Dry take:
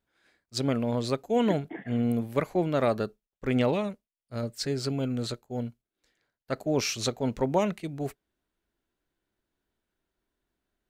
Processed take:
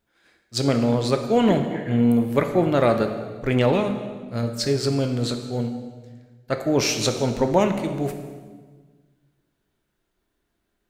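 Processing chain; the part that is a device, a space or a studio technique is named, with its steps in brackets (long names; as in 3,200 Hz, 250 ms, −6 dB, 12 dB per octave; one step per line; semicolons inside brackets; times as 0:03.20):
saturated reverb return (on a send at −4 dB: convolution reverb RT60 1.4 s, pre-delay 4 ms + soft clipping −21 dBFS, distortion −15 dB)
on the sum: level +6 dB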